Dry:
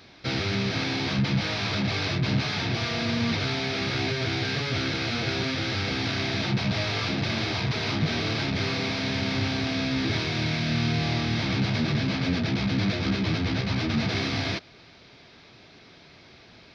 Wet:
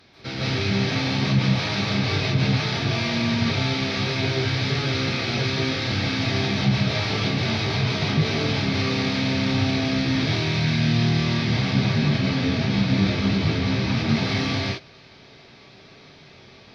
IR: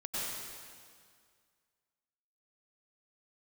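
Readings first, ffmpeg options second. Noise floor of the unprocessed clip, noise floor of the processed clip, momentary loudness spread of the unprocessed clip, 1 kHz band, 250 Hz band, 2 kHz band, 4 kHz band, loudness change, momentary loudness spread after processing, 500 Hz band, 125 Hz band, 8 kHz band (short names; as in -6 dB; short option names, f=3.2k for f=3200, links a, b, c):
-52 dBFS, -48 dBFS, 2 LU, +3.0 dB, +4.5 dB, +2.5 dB, +3.0 dB, +4.0 dB, 3 LU, +4.0 dB, +5.5 dB, n/a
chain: -filter_complex "[1:a]atrim=start_sample=2205,afade=t=out:st=0.19:d=0.01,atrim=end_sample=8820,asetrate=30429,aresample=44100[a];[0:a][a]afir=irnorm=-1:irlink=0"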